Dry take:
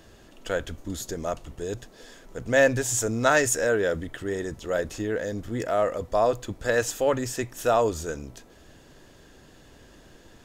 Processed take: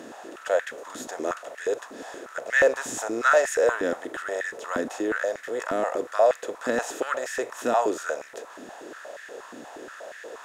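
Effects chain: spectral levelling over time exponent 0.6; treble shelf 9.2 kHz -6 dB; step-sequenced high-pass 8.4 Hz 260–1800 Hz; trim -8 dB

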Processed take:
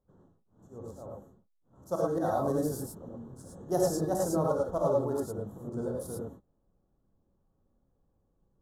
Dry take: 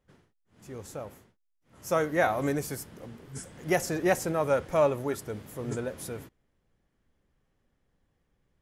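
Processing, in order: local Wiener filter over 9 samples; slow attack 100 ms; Butterworth band-stop 2.3 kHz, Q 0.69; gated-style reverb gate 130 ms rising, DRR -2.5 dB; trim -3.5 dB

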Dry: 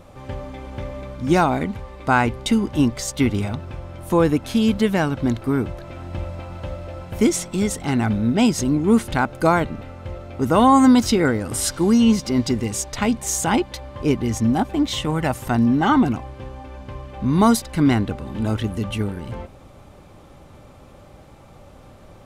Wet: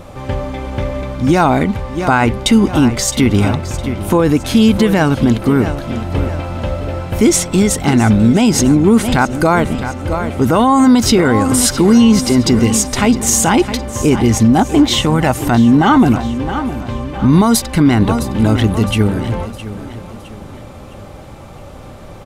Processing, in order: feedback delay 662 ms, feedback 42%, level -14.5 dB; loudness maximiser +12 dB; trim -1 dB

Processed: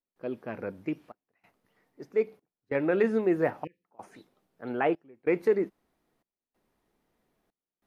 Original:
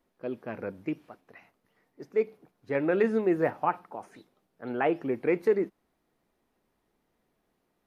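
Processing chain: spectral selection erased 3.64–3.85 s, 530–1700 Hz; trance gate ".xxxxxx." 94 bpm -24 dB

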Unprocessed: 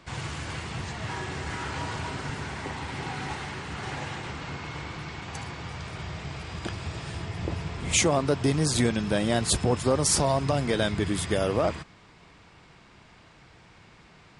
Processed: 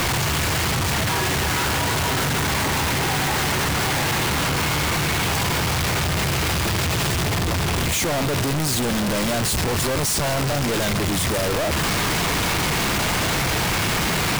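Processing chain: one-bit comparator; trim +8 dB

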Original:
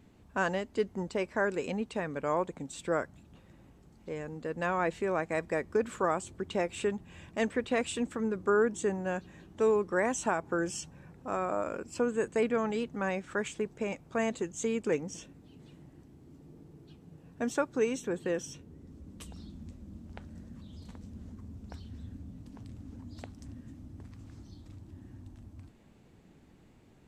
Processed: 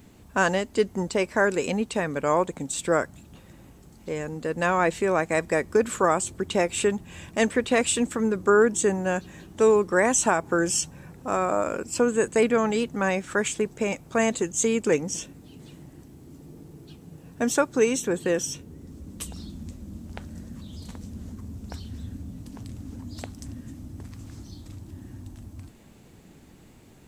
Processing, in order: treble shelf 6 kHz +12 dB; trim +7.5 dB

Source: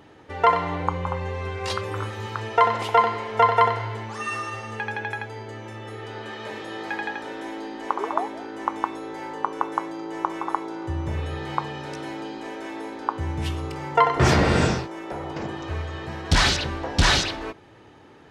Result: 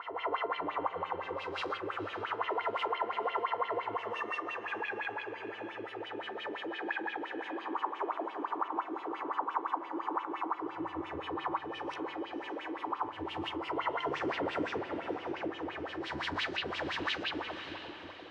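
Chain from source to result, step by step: reverse spectral sustain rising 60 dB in 1.04 s; filtered feedback delay 349 ms, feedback 54%, low-pass 950 Hz, level -12 dB; peak limiter -13.5 dBFS, peak gain reduction 10.5 dB; wah-wah 5.8 Hz 300–3100 Hz, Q 5.7; echo that smears into a reverb 528 ms, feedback 41%, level -14 dB; on a send at -14 dB: reverberation RT60 0.65 s, pre-delay 5 ms; on the sum: compression 1.5:1, threshold -44 dBFS, peak gain reduction 7 dB; peaking EQ 95 Hz +5.5 dB 0.23 oct; trim +4.5 dB

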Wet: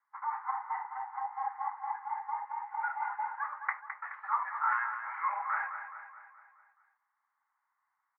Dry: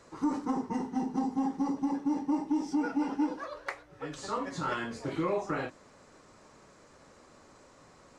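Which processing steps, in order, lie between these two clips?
gate -44 dBFS, range -25 dB; Chebyshev band-pass 820–2100 Hz, order 4; feedback delay 212 ms, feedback 52%, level -9 dB; trim +5.5 dB

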